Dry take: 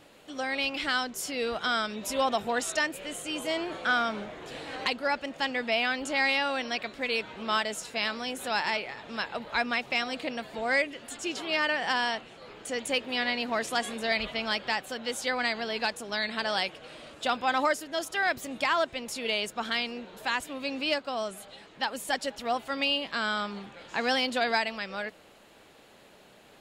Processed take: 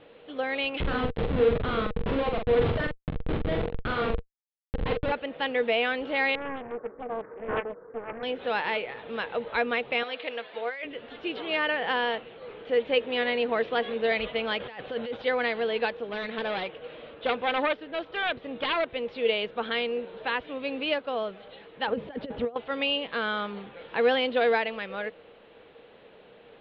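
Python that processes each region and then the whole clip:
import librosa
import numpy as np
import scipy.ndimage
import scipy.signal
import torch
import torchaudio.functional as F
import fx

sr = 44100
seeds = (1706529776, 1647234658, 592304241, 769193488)

y = fx.chain(x, sr, fx.schmitt(flips_db=-28.5),
    fx.bass_treble(bass_db=5, treble_db=1),
    fx.doubler(ms=44.0, db=-4.0), at=(0.8, 5.12))
y = fx.chain(y, sr, fx.cheby_ripple(hz=1600.0, ripple_db=9),
    fx.doppler_dist(depth_ms=0.96), at=(6.35, 8.23))
y = fx.chain(y, sr, fx.highpass(hz=1300.0, slope=6),
    fx.over_compress(threshold_db=-34.0, ratio=-1.0), at=(10.03, 10.85))
y = fx.chain(y, sr, fx.peak_eq(hz=92.0, db=8.5, octaves=0.8),
    fx.over_compress(threshold_db=-38.0, ratio=-1.0), at=(14.6, 15.22))
y = fx.chain(y, sr, fx.self_delay(depth_ms=0.2),
    fx.high_shelf(hz=8100.0, db=-8.5), at=(16.06, 18.9))
y = fx.chain(y, sr, fx.riaa(side='playback'),
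    fx.over_compress(threshold_db=-34.0, ratio=-0.5),
    fx.highpass(hz=81.0, slope=12), at=(21.87, 22.56))
y = scipy.signal.sosfilt(scipy.signal.butter(8, 3700.0, 'lowpass', fs=sr, output='sos'), y)
y = fx.peak_eq(y, sr, hz=470.0, db=13.5, octaves=0.25)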